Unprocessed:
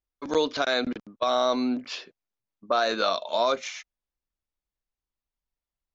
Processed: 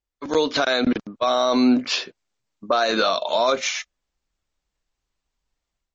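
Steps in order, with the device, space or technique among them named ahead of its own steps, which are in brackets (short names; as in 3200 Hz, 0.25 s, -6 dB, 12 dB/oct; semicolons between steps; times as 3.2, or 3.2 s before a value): 1.34–2.9 high shelf 5300 Hz +3 dB; low-bitrate web radio (AGC gain up to 9.5 dB; limiter -12 dBFS, peak gain reduction 8.5 dB; gain +2.5 dB; MP3 32 kbps 24000 Hz)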